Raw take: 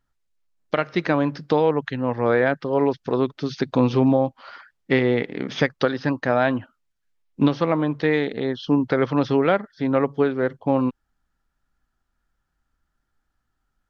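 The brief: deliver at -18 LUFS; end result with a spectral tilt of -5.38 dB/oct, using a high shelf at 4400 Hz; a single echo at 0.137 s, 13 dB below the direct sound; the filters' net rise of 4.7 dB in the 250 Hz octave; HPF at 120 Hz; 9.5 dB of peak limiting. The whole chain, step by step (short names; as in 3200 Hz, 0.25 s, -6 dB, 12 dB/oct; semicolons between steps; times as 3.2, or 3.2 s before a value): HPF 120 Hz; bell 250 Hz +5.5 dB; high shelf 4400 Hz +7.5 dB; limiter -13 dBFS; echo 0.137 s -13 dB; gain +5.5 dB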